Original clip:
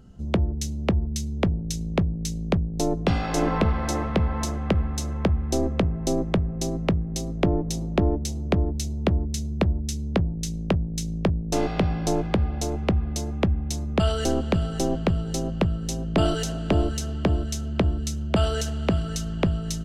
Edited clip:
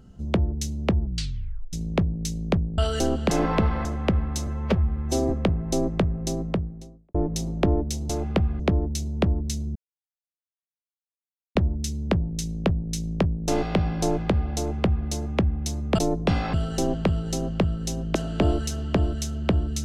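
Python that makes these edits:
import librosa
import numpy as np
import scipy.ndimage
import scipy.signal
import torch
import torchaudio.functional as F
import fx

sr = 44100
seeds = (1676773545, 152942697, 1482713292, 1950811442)

y = fx.studio_fade_out(x, sr, start_s=6.57, length_s=0.92)
y = fx.edit(y, sr, fx.tape_stop(start_s=1.01, length_s=0.72),
    fx.swap(start_s=2.78, length_s=0.55, other_s=14.03, other_length_s=0.52),
    fx.cut(start_s=3.88, length_s=0.59),
    fx.stretch_span(start_s=5.09, length_s=0.55, factor=1.5),
    fx.insert_silence(at_s=9.6, length_s=1.8),
    fx.duplicate(start_s=12.62, length_s=0.5, to_s=8.44),
    fx.cut(start_s=16.17, length_s=0.29), tone=tone)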